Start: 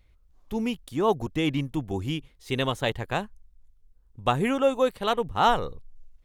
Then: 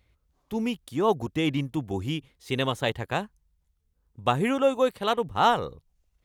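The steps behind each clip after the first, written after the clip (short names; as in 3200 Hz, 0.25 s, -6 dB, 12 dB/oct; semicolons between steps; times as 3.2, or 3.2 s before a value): HPF 66 Hz 12 dB/oct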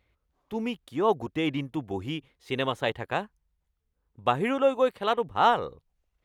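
tone controls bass -6 dB, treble -9 dB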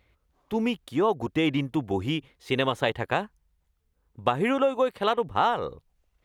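compressor 6:1, threshold -25 dBFS, peak gain reduction 9.5 dB; gain +5.5 dB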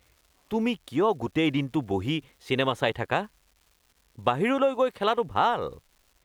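crackle 440/s -50 dBFS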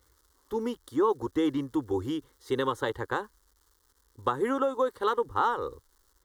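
fixed phaser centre 670 Hz, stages 6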